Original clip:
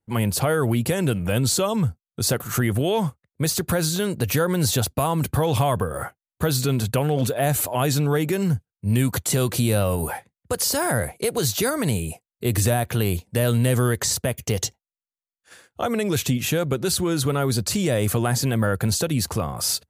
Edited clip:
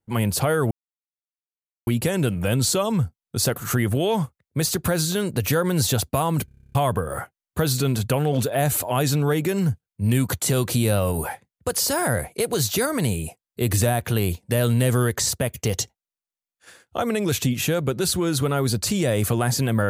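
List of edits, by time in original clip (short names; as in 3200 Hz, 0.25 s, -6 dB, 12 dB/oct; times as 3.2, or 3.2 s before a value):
0.71 insert silence 1.16 s
5.29 stutter in place 0.03 s, 10 plays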